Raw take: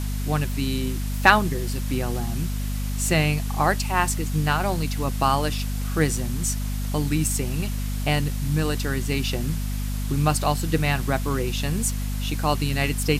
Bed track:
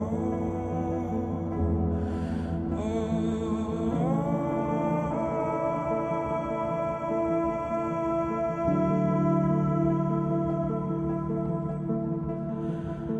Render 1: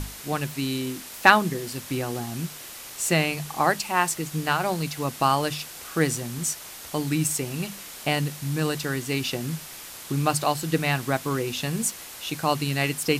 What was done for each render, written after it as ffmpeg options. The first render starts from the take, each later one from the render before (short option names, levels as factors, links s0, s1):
-af "bandreject=f=50:t=h:w=6,bandreject=f=100:t=h:w=6,bandreject=f=150:t=h:w=6,bandreject=f=200:t=h:w=6,bandreject=f=250:t=h:w=6"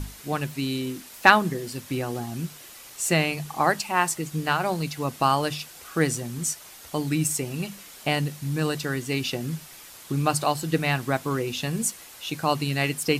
-af "afftdn=nr=6:nf=-41"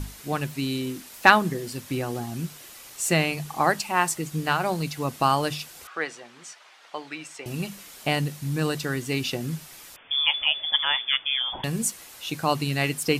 -filter_complex "[0:a]asettb=1/sr,asplit=3[s0][s1][s2];[s0]atrim=end=5.874[s3];[s1]atrim=start=5.87:end=7.46,asetpts=PTS-STARTPTS,afade=t=in:d=0.004:c=qsin,afade=t=out:st=1.586:d=0.004:c=qsin,highpass=690,lowpass=3100[s4];[s2]atrim=start=7.456[s5];[s3][s4]acrossfade=d=0.004:c1=hsin:c2=qsin[s6];[s6][s5]acrossfade=d=0.004:c1=qsin:c2=hsin,asettb=1/sr,asplit=3[s7][s8][s9];[s7]atrim=end=9.964[s10];[s8]atrim=start=9.96:end=11.64,asetpts=PTS-STARTPTS,afade=t=in:d=0.004:c=qsin,afade=t=out:st=1.676:d=0.004:c=qsin,lowpass=f=3100:t=q:w=0.5098,lowpass=f=3100:t=q:w=0.6013,lowpass=f=3100:t=q:w=0.9,lowpass=f=3100:t=q:w=2.563,afreqshift=-3600[s11];[s9]atrim=start=11.636[s12];[s10][s11]acrossfade=d=0.004:c1=hsin:c2=qsin[s13];[s13][s12]acrossfade=d=0.004:c1=qsin:c2=hsin"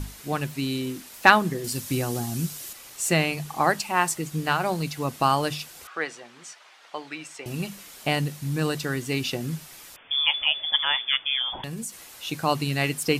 -filter_complex "[0:a]asettb=1/sr,asplit=3[s0][s1][s2];[s0]atrim=end=1.644[s3];[s1]atrim=start=1.64:end=2.73,asetpts=PTS-STARTPTS,afade=t=in:d=0.004:c=qsin,afade=t=out:st=1.086:d=0.004:c=qsin,bass=f=250:g=4,treble=f=4000:g=9[s4];[s2]atrim=start=2.726[s5];[s3][s4]acrossfade=d=0.004:c1=hsin:c2=qsin[s6];[s6][s5]acrossfade=d=0.004:c1=qsin:c2=hsin,asettb=1/sr,asplit=3[s7][s8][s9];[s7]atrim=end=11.534[s10];[s8]atrim=start=11.53:end=12.11,asetpts=PTS-STARTPTS,afade=t=in:d=0.004:c=qsin,afade=t=out:st=0.576:d=0.004:c=qsin,acompressor=threshold=0.0316:ratio=6:attack=3.2:release=140:knee=1:detection=peak[s11];[s9]atrim=start=12.106[s12];[s10][s11]acrossfade=d=0.004:c1=hsin:c2=qsin[s13];[s13][s12]acrossfade=d=0.004:c1=qsin:c2=hsin"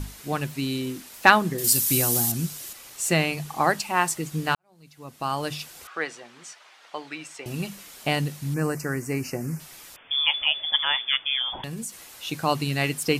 -filter_complex "[0:a]asettb=1/sr,asplit=3[s0][s1][s2];[s0]atrim=end=1.584[s3];[s1]atrim=start=1.58:end=2.32,asetpts=PTS-STARTPTS,afade=t=in:d=0.004:c=qsin,afade=t=out:st=0.736:d=0.004:c=qsin,aemphasis=mode=production:type=75kf[s4];[s2]atrim=start=2.316[s5];[s3][s4]acrossfade=d=0.004:c1=hsin:c2=qsin[s6];[s6][s5]acrossfade=d=0.004:c1=qsin:c2=hsin,asettb=1/sr,asplit=3[s7][s8][s9];[s7]atrim=end=8.544[s10];[s8]atrim=start=8.54:end=9.6,asetpts=PTS-STARTPTS,afade=t=in:d=0.004:c=qsin,afade=t=out:st=1.056:d=0.004:c=qsin,asuperstop=centerf=3500:order=4:qfactor=1.1[s11];[s9]atrim=start=9.596[s12];[s10][s11]acrossfade=d=0.004:c1=hsin:c2=qsin[s13];[s13][s12]acrossfade=d=0.004:c1=qsin:c2=hsin,asplit=2[s14][s15];[s14]atrim=end=4.55,asetpts=PTS-STARTPTS,afade=t=out:st=4.546:d=0.004:c=hsin[s16];[s15]atrim=start=4.55,asetpts=PTS-STARTPTS,afade=t=in:d=1.09:c=qua[s17];[s16][s17]concat=n=2:v=0:a=1"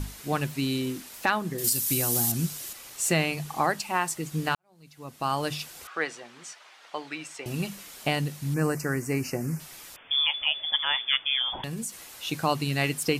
-af "alimiter=limit=0.237:level=0:latency=1:release=495"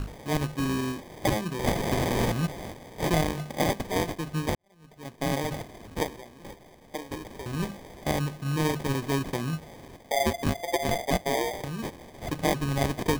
-af "acrusher=samples=32:mix=1:aa=0.000001"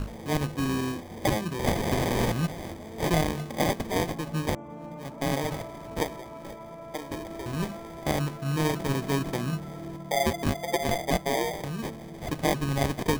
-filter_complex "[1:a]volume=0.2[s0];[0:a][s0]amix=inputs=2:normalize=0"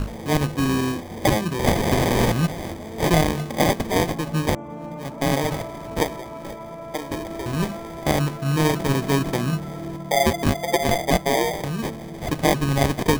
-af "volume=2.11"